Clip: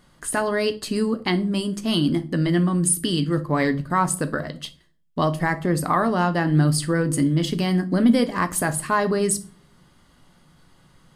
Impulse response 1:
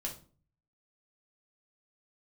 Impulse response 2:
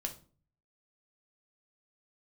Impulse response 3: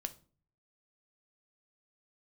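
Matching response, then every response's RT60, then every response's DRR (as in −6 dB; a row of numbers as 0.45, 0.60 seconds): 3; 0.40, 0.40, 0.40 seconds; −1.5, 3.0, 9.0 decibels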